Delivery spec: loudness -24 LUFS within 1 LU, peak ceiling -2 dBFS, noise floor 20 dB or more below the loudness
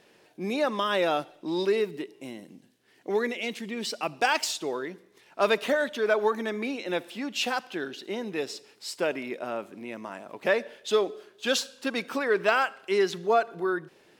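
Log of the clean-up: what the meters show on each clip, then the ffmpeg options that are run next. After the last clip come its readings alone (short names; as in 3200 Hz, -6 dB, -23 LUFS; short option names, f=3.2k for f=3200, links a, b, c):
loudness -28.5 LUFS; peak -8.5 dBFS; loudness target -24.0 LUFS
-> -af "volume=4.5dB"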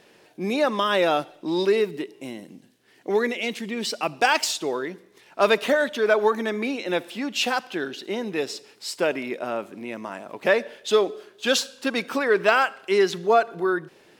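loudness -24.0 LUFS; peak -4.0 dBFS; noise floor -56 dBFS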